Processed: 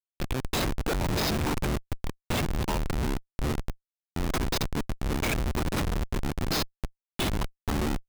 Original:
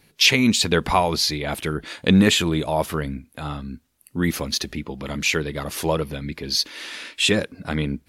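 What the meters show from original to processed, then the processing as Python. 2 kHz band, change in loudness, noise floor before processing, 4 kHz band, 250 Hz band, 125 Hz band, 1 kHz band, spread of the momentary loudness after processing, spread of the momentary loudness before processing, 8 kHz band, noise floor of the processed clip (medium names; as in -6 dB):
-10.5 dB, -9.0 dB, -62 dBFS, -12.5 dB, -9.0 dB, -4.5 dB, -7.0 dB, 7 LU, 15 LU, -10.0 dB, under -85 dBFS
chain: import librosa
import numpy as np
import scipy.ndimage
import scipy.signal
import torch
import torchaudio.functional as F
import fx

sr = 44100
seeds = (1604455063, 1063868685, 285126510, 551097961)

p1 = fx.band_invert(x, sr, width_hz=500)
p2 = p1 + 0.57 * np.pad(p1, (int(0.8 * sr / 1000.0), 0))[:len(p1)]
p3 = fx.over_compress(p2, sr, threshold_db=-23.0, ratio=-1.0)
p4 = p3 + fx.echo_single(p3, sr, ms=226, db=-23.0, dry=0)
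p5 = fx.schmitt(p4, sr, flips_db=-20.0)
y = p5 * 10.0 ** (-1.5 / 20.0)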